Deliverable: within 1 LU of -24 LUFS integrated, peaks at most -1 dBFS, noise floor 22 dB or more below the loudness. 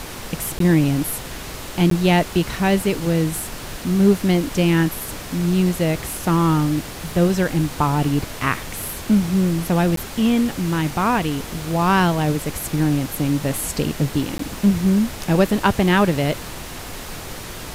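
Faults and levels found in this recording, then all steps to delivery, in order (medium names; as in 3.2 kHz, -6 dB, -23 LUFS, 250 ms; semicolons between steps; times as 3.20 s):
dropouts 4; longest dropout 13 ms; noise floor -33 dBFS; noise floor target -42 dBFS; loudness -20.0 LUFS; peak level -2.0 dBFS; loudness target -24.0 LUFS
-> interpolate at 0.59/1.90/9.96/14.38 s, 13 ms; noise print and reduce 9 dB; trim -4 dB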